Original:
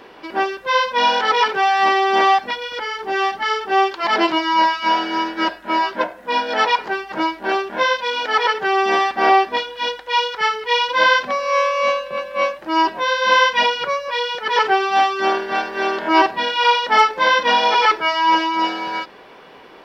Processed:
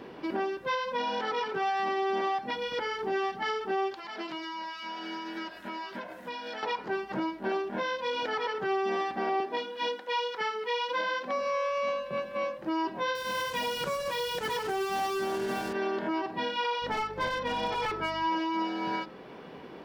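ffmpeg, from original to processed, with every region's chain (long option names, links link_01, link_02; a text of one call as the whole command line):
ffmpeg -i in.wav -filter_complex "[0:a]asettb=1/sr,asplit=3[link_01][link_02][link_03];[link_01]atrim=end=3.944[link_04];[link_02]atrim=start=3.94:end=6.63,asetpts=PTS-STARTPTS,afade=type=in:duration=0.004:curve=qsin,afade=type=out:start_time=2.686:duration=0.004:curve=qsin,tiltshelf=frequency=1100:gain=-6,acompressor=threshold=-30dB:ratio=8:attack=3.2:release=140:knee=1:detection=peak[link_05];[link_03]atrim=start=6.626[link_06];[link_04][link_05]acrossfade=duration=0.004:curve1=hsin:curve2=qsin[link_07];[link_07][link_06]acrossfade=duration=0.004:curve1=qsin:curve2=hsin,asettb=1/sr,asplit=3[link_08][link_09][link_10];[link_08]atrim=end=9.404[link_11];[link_09]atrim=start=9.4:end=11.41,asetpts=PTS-STARTPTS,afade=type=in:duration=0.004:curve=qsin,afade=type=out:start_time=2.006:duration=0.004:curve=qsin,highpass=frequency=200:width=0.5412,highpass=frequency=200:width=1.3066,bandreject=frequency=50:width_type=h:width=6,bandreject=frequency=100:width_type=h:width=6,bandreject=frequency=150:width_type=h:width=6,bandreject=frequency=200:width_type=h:width=6,bandreject=frequency=250:width_type=h:width=6,bandreject=frequency=300:width_type=h:width=6,bandreject=frequency=350:width_type=h:width=6,bandreject=frequency=400:width_type=h:width=6,bandreject=frequency=450:width_type=h:width=6[link_12];[link_10]atrim=start=11.406[link_13];[link_11][link_12]acrossfade=duration=0.004:curve1=hsin:curve2=qsin[link_14];[link_14][link_13]acrossfade=duration=0.004:curve1=qsin:curve2=hsin,asettb=1/sr,asplit=3[link_15][link_16][link_17];[link_15]atrim=end=13.154[link_18];[link_16]atrim=start=13.15:end=15.73,asetpts=PTS-STARTPTS,afade=type=in:duration=0.004:curve=qsin,afade=type=out:start_time=2.576:duration=0.004:curve=qsin,bass=frequency=250:gain=3,treble=frequency=4000:gain=8,acompressor=threshold=-21dB:ratio=5:attack=3.2:release=140:knee=1:detection=peak,acrusher=bits=4:mix=0:aa=0.5[link_19];[link_17]atrim=start=15.726[link_20];[link_18][link_19]acrossfade=duration=0.004:curve1=hsin:curve2=qsin[link_21];[link_21][link_20]acrossfade=duration=0.004:curve1=qsin:curve2=hsin,asettb=1/sr,asplit=3[link_22][link_23][link_24];[link_22]atrim=end=16.824[link_25];[link_23]atrim=start=16.82:end=18.23,asetpts=PTS-STARTPTS,afade=type=in:duration=0.004:curve=qsin,afade=type=out:start_time=1.406:duration=0.004:curve=qsin,aeval=exprs='clip(val(0),-1,0.211)':channel_layout=same,aeval=exprs='val(0)+0.01*(sin(2*PI*50*n/s)+sin(2*PI*2*50*n/s)/2+sin(2*PI*3*50*n/s)/3+sin(2*PI*4*50*n/s)/4+sin(2*PI*5*50*n/s)/5)':channel_layout=same[link_26];[link_24]atrim=start=18.226[link_27];[link_25][link_26]acrossfade=duration=0.004:curve1=hsin:curve2=qsin[link_28];[link_28][link_27]acrossfade=duration=0.004:curve1=qsin:curve2=hsin,equalizer=frequency=160:width_type=o:width=2.9:gain=14.5,bandreject=frequency=52.2:width_type=h:width=4,bandreject=frequency=104.4:width_type=h:width=4,bandreject=frequency=156.6:width_type=h:width=4,bandreject=frequency=208.8:width_type=h:width=4,bandreject=frequency=261:width_type=h:width=4,bandreject=frequency=313.2:width_type=h:width=4,bandreject=frequency=365.4:width_type=h:width=4,bandreject=frequency=417.6:width_type=h:width=4,bandreject=frequency=469.8:width_type=h:width=4,bandreject=frequency=522:width_type=h:width=4,bandreject=frequency=574.2:width_type=h:width=4,bandreject=frequency=626.4:width_type=h:width=4,bandreject=frequency=678.6:width_type=h:width=4,bandreject=frequency=730.8:width_type=h:width=4,bandreject=frequency=783:width_type=h:width=4,bandreject=frequency=835.2:width_type=h:width=4,bandreject=frequency=887.4:width_type=h:width=4,bandreject=frequency=939.6:width_type=h:width=4,bandreject=frequency=991.8:width_type=h:width=4,bandreject=frequency=1044:width_type=h:width=4,bandreject=frequency=1096.2:width_type=h:width=4,bandreject=frequency=1148.4:width_type=h:width=4,bandreject=frequency=1200.6:width_type=h:width=4,bandreject=frequency=1252.8:width_type=h:width=4,bandreject=frequency=1305:width_type=h:width=4,bandreject=frequency=1357.2:width_type=h:width=4,bandreject=frequency=1409.4:width_type=h:width=4,bandreject=frequency=1461.6:width_type=h:width=4,alimiter=limit=-14.5dB:level=0:latency=1:release=353,volume=-8dB" out.wav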